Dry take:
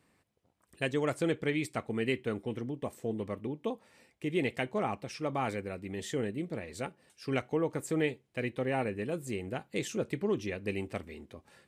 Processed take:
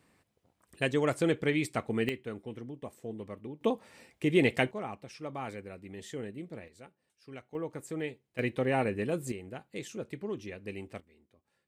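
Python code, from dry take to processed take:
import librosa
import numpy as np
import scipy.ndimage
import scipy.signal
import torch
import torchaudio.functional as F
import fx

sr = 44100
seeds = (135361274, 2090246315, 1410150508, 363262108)

y = fx.gain(x, sr, db=fx.steps((0.0, 2.5), (2.09, -5.5), (3.61, 6.0), (4.71, -6.0), (6.68, -14.5), (7.55, -6.0), (8.39, 3.0), (9.32, -6.0), (11.0, -18.0)))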